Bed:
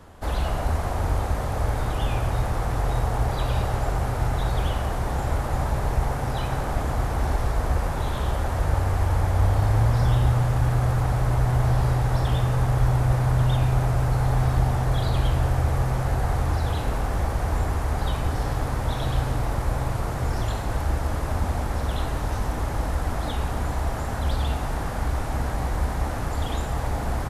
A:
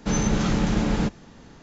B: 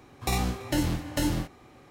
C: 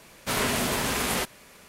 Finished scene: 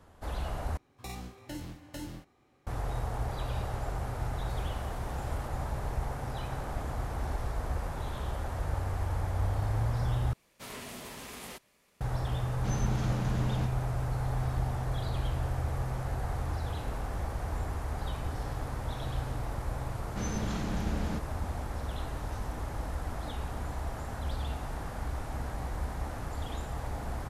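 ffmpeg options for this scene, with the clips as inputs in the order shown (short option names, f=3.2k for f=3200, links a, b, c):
-filter_complex "[3:a]asplit=2[a][b];[1:a]asplit=2[c][d];[0:a]volume=-10dB[e];[a]acompressor=threshold=-39dB:ratio=6:attack=3.2:release=140:knee=1:detection=peak[f];[b]equalizer=f=1.5k:t=o:w=0.21:g=-4.5[g];[e]asplit=3[h][i][j];[h]atrim=end=0.774[k];[2:a]atrim=end=1.9,asetpts=PTS-STARTPTS,volume=-14.5dB[l];[i]atrim=start=2.666:end=10.334[m];[g]atrim=end=1.68,asetpts=PTS-STARTPTS,volume=-17dB[n];[j]atrim=start=12.006[o];[f]atrim=end=1.68,asetpts=PTS-STARTPTS,volume=-14.5dB,afade=t=in:d=0.004:c=hsin,afade=t=out:st=1.676:d=0.004:c=hsin,adelay=4230[p];[c]atrim=end=1.62,asetpts=PTS-STARTPTS,volume=-13.5dB,afade=t=in:d=0.004:c=hsin,afade=t=out:st=1.616:d=0.004:c=hsin,adelay=12580[q];[d]atrim=end=1.62,asetpts=PTS-STARTPTS,volume=-12.5dB,afade=t=in:d=0.004:c=hsin,afade=t=out:st=1.616:d=0.004:c=hsin,adelay=20100[r];[k][l]acrossfade=d=0.004:c1=hsin:c2=hsin[s];[s][m]acrossfade=d=0.004:c1=hsin:c2=hsin[t];[t][n]acrossfade=d=0.004:c1=hsin:c2=hsin[u];[u][o]acrossfade=d=0.004:c1=hsin:c2=hsin[v];[v][p][q][r]amix=inputs=4:normalize=0"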